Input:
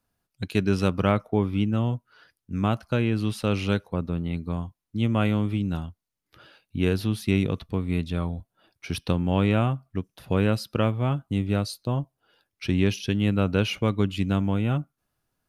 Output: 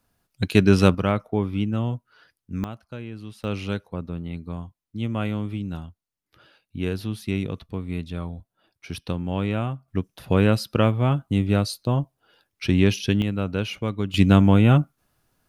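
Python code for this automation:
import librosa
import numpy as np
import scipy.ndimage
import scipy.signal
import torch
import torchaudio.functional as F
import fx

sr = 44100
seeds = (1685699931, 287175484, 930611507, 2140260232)

y = fx.gain(x, sr, db=fx.steps((0.0, 7.0), (0.95, -0.5), (2.64, -12.0), (3.44, -3.5), (9.88, 4.0), (13.22, -3.0), (14.14, 9.0)))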